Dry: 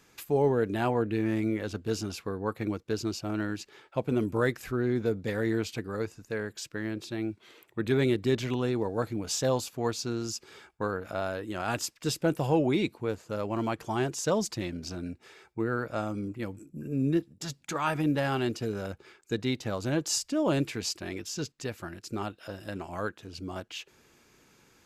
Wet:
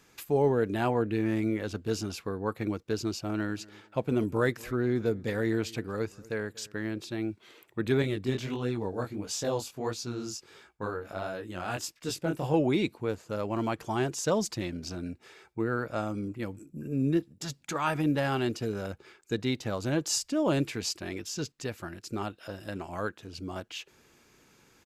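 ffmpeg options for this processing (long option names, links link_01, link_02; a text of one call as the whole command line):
ffmpeg -i in.wav -filter_complex "[0:a]asplit=3[link_01][link_02][link_03];[link_01]afade=type=out:start_time=3.56:duration=0.02[link_04];[link_02]asplit=2[link_05][link_06];[link_06]adelay=238,lowpass=frequency=2000:poles=1,volume=-22dB,asplit=2[link_07][link_08];[link_08]adelay=238,lowpass=frequency=2000:poles=1,volume=0.27[link_09];[link_05][link_07][link_09]amix=inputs=3:normalize=0,afade=type=in:start_time=3.56:duration=0.02,afade=type=out:start_time=6.78:duration=0.02[link_10];[link_03]afade=type=in:start_time=6.78:duration=0.02[link_11];[link_04][link_10][link_11]amix=inputs=3:normalize=0,asettb=1/sr,asplit=3[link_12][link_13][link_14];[link_12]atrim=end=8.024[link_15];[link_13]atrim=start=8.02:end=12.54,asetpts=PTS-STARTPTS,afade=type=in:duration=0.004:curve=qsin,afade=type=out:start_time=4.516:duration=0.004:curve=qsin,flanger=delay=16.5:depth=7.6:speed=1.5[link_16];[link_14]atrim=start=12.536[link_17];[link_15][link_16]acrossfade=duration=0.004:curve1=hsin:curve2=qsin[link_18];[link_18][link_17]acrossfade=duration=0.004:curve1=qsin:curve2=hsin" out.wav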